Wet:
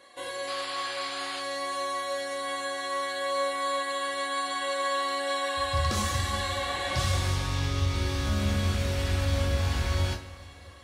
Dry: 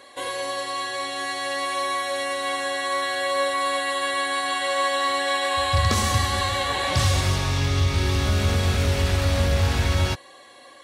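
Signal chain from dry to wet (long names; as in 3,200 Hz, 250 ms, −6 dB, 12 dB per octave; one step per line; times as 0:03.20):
sound drawn into the spectrogram noise, 0:00.47–0:01.41, 670–5,100 Hz −32 dBFS
coupled-rooms reverb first 0.33 s, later 3.9 s, from −21 dB, DRR 1 dB
level −9 dB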